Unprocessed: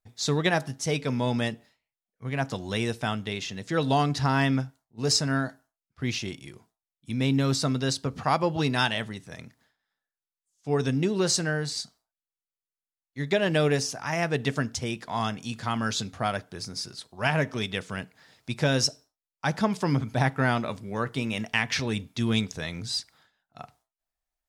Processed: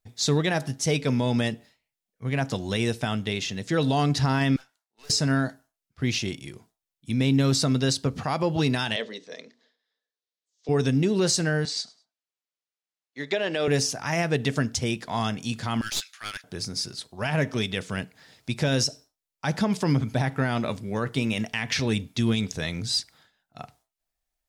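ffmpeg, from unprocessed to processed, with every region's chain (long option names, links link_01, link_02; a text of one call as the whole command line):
ffmpeg -i in.wav -filter_complex "[0:a]asettb=1/sr,asplit=3[link_01][link_02][link_03];[link_01]atrim=end=4.564[link_04];[link_02]atrim=start=4.56:end=5.1,asetpts=PTS-STARTPTS,afade=type=in:duration=0.004:curve=qsin,afade=type=out:start_time=0.536:duration=0.004:curve=qsin,highpass=1200,highshelf=frequency=6400:gain=-7,aeval=exprs='(tanh(316*val(0)+0.7)-tanh(0.7))/316':channel_layout=same[link_05];[link_03]atrim=start=5.096[link_06];[link_04][link_05]acrossfade=duration=0.004:curve1=hsin:curve2=qsin[link_07];[link_07][link_06]acrossfade=duration=0.004:curve1=qsin:curve2=hsin,asettb=1/sr,asplit=3[link_08][link_09][link_10];[link_08]atrim=end=8.964[link_11];[link_09]atrim=start=8.96:end=10.69,asetpts=PTS-STARTPTS,afade=type=in:duration=0.004:curve=qsin,afade=type=out:start_time=1.726:duration=0.004:curve=qsin,highpass=frequency=270:width=0.5412,highpass=frequency=270:width=1.3066,equalizer=frequency=330:width_type=q:width=4:gain=-6,equalizer=frequency=470:width_type=q:width=4:gain=8,equalizer=frequency=820:width_type=q:width=4:gain=-8,equalizer=frequency=1400:width_type=q:width=4:gain=-8,equalizer=frequency=2500:width_type=q:width=4:gain=-4,equalizer=frequency=3900:width_type=q:width=4:gain=4,lowpass=frequency=5900:width=0.5412,lowpass=frequency=5900:width=1.3066,bandreject=frequency=60:width_type=h:width=6,bandreject=frequency=120:width_type=h:width=6,bandreject=frequency=180:width_type=h:width=6,bandreject=frequency=240:width_type=h:width=6,bandreject=frequency=300:width_type=h:width=6,bandreject=frequency=360:width_type=h:width=6,bandreject=frequency=420:width_type=h:width=6,bandreject=frequency=480:width_type=h:width=6,bandreject=frequency=540:width_type=h:width=6,bandreject=frequency=600:width_type=h:width=6[link_12];[link_10]atrim=start=10.686[link_13];[link_11][link_12]acrossfade=duration=0.004:curve1=hsin:curve2=qsin[link_14];[link_14][link_13]acrossfade=duration=0.004:curve1=qsin:curve2=hsin,asettb=1/sr,asplit=3[link_15][link_16][link_17];[link_15]atrim=end=11.654[link_18];[link_16]atrim=start=11.65:end=13.68,asetpts=PTS-STARTPTS,afade=type=in:duration=0.004:curve=qsin,afade=type=out:start_time=2.026:duration=0.004:curve=qsin,highpass=360,lowpass=6000,aecho=1:1:103|206:0.0668|0.0187,atrim=end_sample=89523[link_19];[link_17]atrim=start=13.676[link_20];[link_18][link_19]acrossfade=duration=0.004:curve1=hsin:curve2=qsin[link_21];[link_21][link_20]acrossfade=duration=0.004:curve1=qsin:curve2=hsin,asettb=1/sr,asplit=3[link_22][link_23][link_24];[link_22]atrim=end=15.814[link_25];[link_23]atrim=start=15.81:end=16.44,asetpts=PTS-STARTPTS,afade=type=in:duration=0.004:curve=qsin,afade=type=out:start_time=0.626:duration=0.004:curve=qsin,highpass=frequency=1500:width=0.5412,highpass=frequency=1500:width=1.3066,aeval=exprs='clip(val(0),-1,0.0158)':channel_layout=same[link_26];[link_24]atrim=start=16.436[link_27];[link_25][link_26]acrossfade=duration=0.004:curve1=hsin:curve2=qsin[link_28];[link_28][link_27]acrossfade=duration=0.004:curve1=qsin:curve2=hsin,alimiter=limit=-18dB:level=0:latency=1:release=65,equalizer=frequency=1100:width=1:gain=-4,volume=4.5dB" out.wav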